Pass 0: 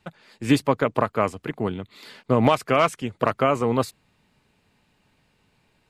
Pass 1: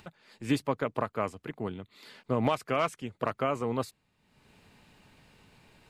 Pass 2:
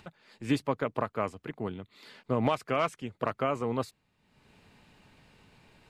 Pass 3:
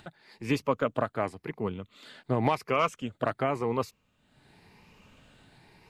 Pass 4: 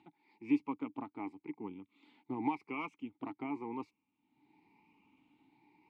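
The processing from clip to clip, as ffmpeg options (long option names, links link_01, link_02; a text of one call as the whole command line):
ffmpeg -i in.wav -af "acompressor=mode=upward:threshold=-36dB:ratio=2.5,volume=-9dB" out.wav
ffmpeg -i in.wav -af "highshelf=frequency=8800:gain=-6.5" out.wav
ffmpeg -i in.wav -af "afftfilt=real='re*pow(10,7/40*sin(2*PI*(0.82*log(max(b,1)*sr/1024/100)/log(2)-(0.92)*(pts-256)/sr)))':imag='im*pow(10,7/40*sin(2*PI*(0.82*log(max(b,1)*sr/1024/100)/log(2)-(0.92)*(pts-256)/sr)))':win_size=1024:overlap=0.75,volume=1.5dB" out.wav
ffmpeg -i in.wav -filter_complex "[0:a]asplit=3[link_01][link_02][link_03];[link_01]bandpass=frequency=300:width_type=q:width=8,volume=0dB[link_04];[link_02]bandpass=frequency=870:width_type=q:width=8,volume=-6dB[link_05];[link_03]bandpass=frequency=2240:width_type=q:width=8,volume=-9dB[link_06];[link_04][link_05][link_06]amix=inputs=3:normalize=0,volume=1.5dB" out.wav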